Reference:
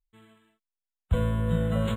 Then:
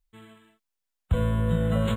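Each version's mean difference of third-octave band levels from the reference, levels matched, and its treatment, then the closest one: 1.5 dB: compression 2:1, threshold -30 dBFS, peak gain reduction 7 dB; trim +6.5 dB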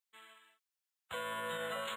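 12.5 dB: high-pass 1 kHz 12 dB/octave; peak limiter -35.5 dBFS, peak gain reduction 8.5 dB; trim +5 dB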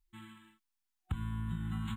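7.0 dB: FFT band-reject 350–740 Hz; compression 6:1, threshold -40 dBFS, peak gain reduction 20.5 dB; trim +5 dB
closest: first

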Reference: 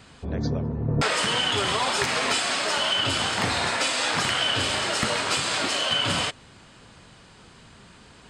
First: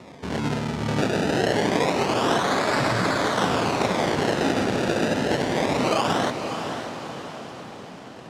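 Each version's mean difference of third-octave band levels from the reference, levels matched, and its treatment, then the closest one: 8.0 dB: in parallel at +3 dB: compression, threshold -35 dBFS, peak gain reduction 14.5 dB; on the sum: decimation with a swept rate 28×, swing 100% 0.26 Hz; band-pass 150–6400 Hz; echo that smears into a reverb 552 ms, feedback 52%, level -7.5 dB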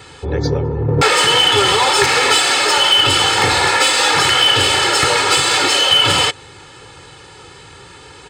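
3.0 dB: high-pass 55 Hz; bass shelf 73 Hz -6.5 dB; comb 2.3 ms, depth 86%; in parallel at -4 dB: hard clipper -21.5 dBFS, distortion -10 dB; on the sum: trim +5.5 dB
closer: second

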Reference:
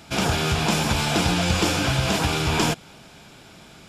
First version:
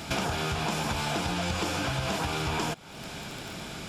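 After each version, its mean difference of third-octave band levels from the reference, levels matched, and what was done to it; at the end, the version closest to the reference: 5.5 dB: dynamic bell 940 Hz, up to +4 dB, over -38 dBFS, Q 0.72; in parallel at -11.5 dB: saturation -16.5 dBFS, distortion -14 dB; on the sum: crackle 18 per s -32 dBFS; compression 5:1, threshold -35 dBFS, peak gain reduction 18.5 dB; trim +5.5 dB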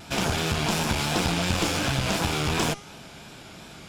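3.5 dB: de-hum 420.4 Hz, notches 27; in parallel at -2 dB: compression, threshold -29 dBFS, peak gain reduction 12.5 dB; on the sum: one-sided clip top -28 dBFS; vibrato 2.8 Hz 59 cents; trim -2.5 dB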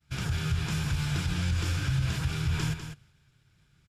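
8.5 dB: expander -38 dBFS; FFT filter 140 Hz 0 dB, 210 Hz -17 dB, 410 Hz -17 dB, 690 Hz -24 dB, 1.6 kHz -9 dB, 2.5 kHz -13 dB; peak limiter -20.5 dBFS, peak gain reduction 7.5 dB; on a send: delay 199 ms -9 dB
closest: second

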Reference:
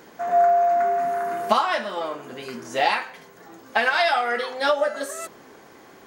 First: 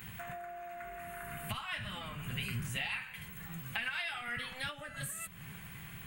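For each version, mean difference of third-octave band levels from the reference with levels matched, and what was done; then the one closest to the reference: 11.5 dB: octave divider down 1 oct, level +1 dB; pre-emphasis filter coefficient 0.8; compression 6:1, threshold -45 dBFS, peak gain reduction 17.5 dB; FFT filter 170 Hz 0 dB, 320 Hz -20 dB, 560 Hz -20 dB, 2.7 kHz -1 dB, 5.7 kHz -26 dB, 8.3 kHz -11 dB; trim +17 dB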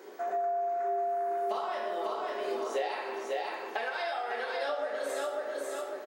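7.5 dB: on a send: feedback delay 546 ms, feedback 29%, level -6 dB; on the sum: simulated room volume 360 m³, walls mixed, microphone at 1.1 m; compression 5:1, threshold -27 dBFS, peak gain reduction 14.5 dB; ladder high-pass 340 Hz, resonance 55%; trim +3 dB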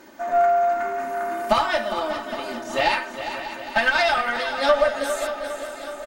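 5.5 dB: comb 3.3 ms, depth 99%; valve stage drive 7 dB, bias 0.55; on a send: feedback delay 406 ms, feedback 53%, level -10 dB; on the sum: bit-crushed delay 591 ms, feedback 55%, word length 10-bit, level -13 dB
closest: third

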